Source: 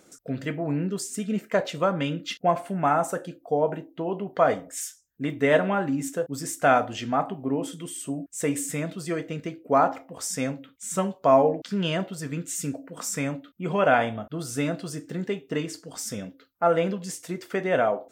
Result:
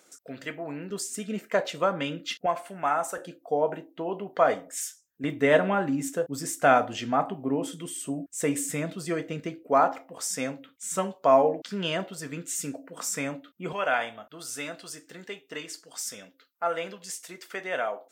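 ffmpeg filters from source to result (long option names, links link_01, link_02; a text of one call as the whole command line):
ffmpeg -i in.wav -af "asetnsamples=nb_out_samples=441:pad=0,asendcmd='0.9 highpass f 360;2.46 highpass f 960;3.18 highpass f 360;5.24 highpass f 130;9.63 highpass f 350;13.73 highpass f 1400',highpass=frequency=800:poles=1" out.wav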